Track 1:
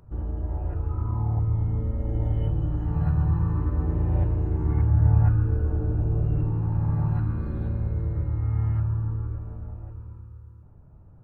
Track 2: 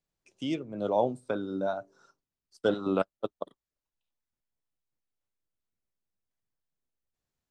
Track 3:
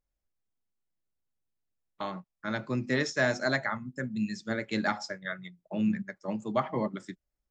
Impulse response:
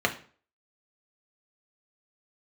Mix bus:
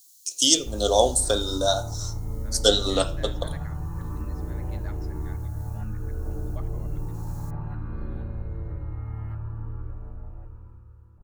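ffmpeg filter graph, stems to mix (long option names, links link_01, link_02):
-filter_complex "[0:a]acompressor=threshold=-23dB:ratio=6,equalizer=frequency=88:width_type=o:width=2.6:gain=-11,adelay=550,volume=-0.5dB[link_01];[1:a]bass=frequency=250:gain=-9,treble=frequency=4000:gain=15,aexciter=amount=10.5:drive=4.9:freq=3300,volume=1dB,asplit=2[link_02][link_03];[link_03]volume=-11dB[link_04];[2:a]volume=-18dB,asplit=2[link_05][link_06];[link_06]apad=whole_len=330999[link_07];[link_02][link_07]sidechaincompress=threshold=-50dB:ratio=8:attack=41:release=856[link_08];[3:a]atrim=start_sample=2205[link_09];[link_04][link_09]afir=irnorm=-1:irlink=0[link_10];[link_01][link_08][link_05][link_10]amix=inputs=4:normalize=0,lowshelf=frequency=76:gain=11.5"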